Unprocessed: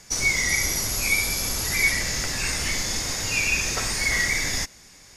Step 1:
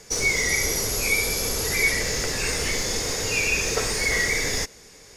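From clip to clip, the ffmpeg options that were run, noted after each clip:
-filter_complex "[0:a]asplit=2[s0][s1];[s1]asoftclip=type=hard:threshold=0.0562,volume=0.266[s2];[s0][s2]amix=inputs=2:normalize=0,equalizer=f=450:t=o:w=0.51:g=13,volume=0.841"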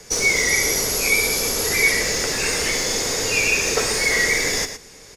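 -filter_complex "[0:a]acrossover=split=180|1700|2200[s0][s1][s2][s3];[s0]acompressor=threshold=0.0126:ratio=6[s4];[s4][s1][s2][s3]amix=inputs=4:normalize=0,aecho=1:1:114:0.316,volume=1.58"

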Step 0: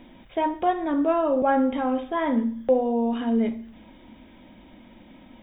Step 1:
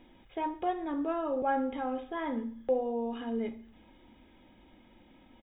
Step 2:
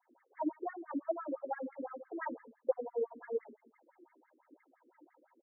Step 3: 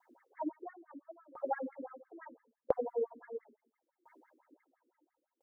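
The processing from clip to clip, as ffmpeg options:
-af "aecho=1:1:2.4:0.33,volume=0.355"
-af "aphaser=in_gain=1:out_gain=1:delay=3.4:decay=0.63:speed=1.1:type=triangular,adynamicequalizer=threshold=0.00708:dfrequency=1300:dqfactor=0.91:tfrequency=1300:tqfactor=0.91:attack=5:release=100:ratio=0.375:range=2.5:mode=cutabove:tftype=bell,afftfilt=real='re*between(b*sr/1024,330*pow(1600/330,0.5+0.5*sin(2*PI*5.9*pts/sr))/1.41,330*pow(1600/330,0.5+0.5*sin(2*PI*5.9*pts/sr))*1.41)':imag='im*between(b*sr/1024,330*pow(1600/330,0.5+0.5*sin(2*PI*5.9*pts/sr))/1.41,330*pow(1600/330,0.5+0.5*sin(2*PI*5.9*pts/sr))*1.41)':win_size=1024:overlap=0.75,volume=0.891"
-af "aeval=exprs='val(0)*pow(10,-29*if(lt(mod(0.74*n/s,1),2*abs(0.74)/1000),1-mod(0.74*n/s,1)/(2*abs(0.74)/1000),(mod(0.74*n/s,1)-2*abs(0.74)/1000)/(1-2*abs(0.74)/1000))/20)':c=same,volume=2.24"

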